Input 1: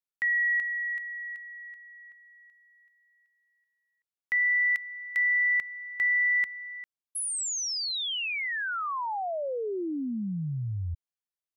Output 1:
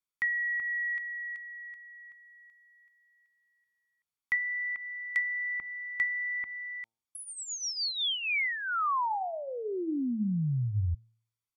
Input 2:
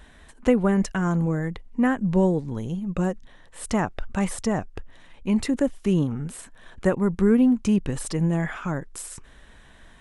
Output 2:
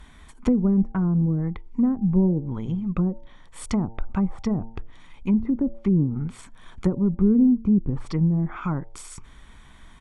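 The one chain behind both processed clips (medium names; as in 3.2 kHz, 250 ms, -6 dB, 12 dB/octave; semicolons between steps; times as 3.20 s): de-hum 113 Hz, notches 8; low-pass that closes with the level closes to 430 Hz, closed at -19.5 dBFS; comb 0.9 ms, depth 49%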